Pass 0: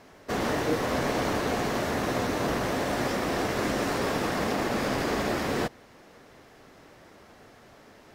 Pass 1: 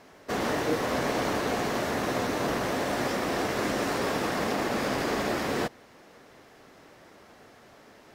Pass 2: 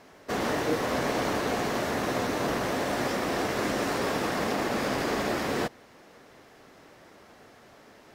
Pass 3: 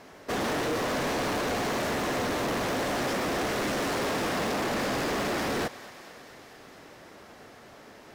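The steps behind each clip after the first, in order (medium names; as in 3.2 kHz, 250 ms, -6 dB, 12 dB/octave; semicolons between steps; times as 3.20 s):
bass shelf 110 Hz -7 dB
no audible change
thinning echo 223 ms, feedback 76%, high-pass 710 Hz, level -19 dB; hard clipper -30 dBFS, distortion -8 dB; trim +3.5 dB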